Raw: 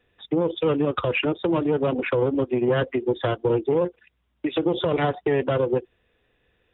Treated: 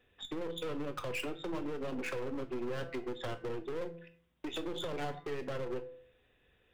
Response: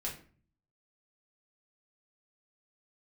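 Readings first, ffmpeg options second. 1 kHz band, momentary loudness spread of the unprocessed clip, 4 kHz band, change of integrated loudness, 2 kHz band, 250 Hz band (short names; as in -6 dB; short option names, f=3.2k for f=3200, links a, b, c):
-14.5 dB, 3 LU, n/a, -15.5 dB, -12.5 dB, -16.0 dB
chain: -filter_complex "[0:a]bandreject=f=168.4:t=h:w=4,bandreject=f=336.8:t=h:w=4,bandreject=f=505.2:t=h:w=4,bandreject=f=673.6:t=h:w=4,bandreject=f=842:t=h:w=4,bandreject=f=1.0104k:t=h:w=4,bandreject=f=1.1788k:t=h:w=4,bandreject=f=1.3472k:t=h:w=4,bandreject=f=1.5156k:t=h:w=4,bandreject=f=1.684k:t=h:w=4,bandreject=f=1.8524k:t=h:w=4,bandreject=f=2.0208k:t=h:w=4,bandreject=f=2.1892k:t=h:w=4,acompressor=threshold=-29dB:ratio=10,aeval=exprs='0.112*(cos(1*acos(clip(val(0)/0.112,-1,1)))-cos(1*PI/2))+0.0126*(cos(6*acos(clip(val(0)/0.112,-1,1)))-cos(6*PI/2))':c=same,volume=30.5dB,asoftclip=hard,volume=-30.5dB,asplit=2[a][b];[1:a]atrim=start_sample=2205,highshelf=f=2.8k:g=11.5[c];[b][c]afir=irnorm=-1:irlink=0,volume=-10dB[d];[a][d]amix=inputs=2:normalize=0,volume=-5dB"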